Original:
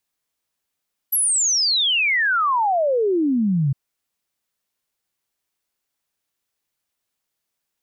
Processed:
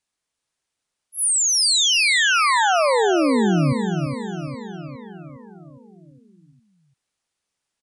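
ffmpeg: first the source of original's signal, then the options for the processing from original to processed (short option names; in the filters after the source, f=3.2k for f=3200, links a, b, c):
-f lavfi -i "aevalsrc='0.158*clip(min(t,2.61-t)/0.01,0,1)*sin(2*PI*12000*2.61/log(130/12000)*(exp(log(130/12000)*t/2.61)-1))':d=2.61:s=44100"
-filter_complex "[0:a]asplit=2[a][b];[b]aecho=0:1:410|820|1230|1640|2050|2460|2870:0.376|0.222|0.131|0.0772|0.0455|0.0269|0.0159[c];[a][c]amix=inputs=2:normalize=0,aresample=22050,aresample=44100,asplit=2[d][e];[e]aecho=0:1:342:0.447[f];[d][f]amix=inputs=2:normalize=0"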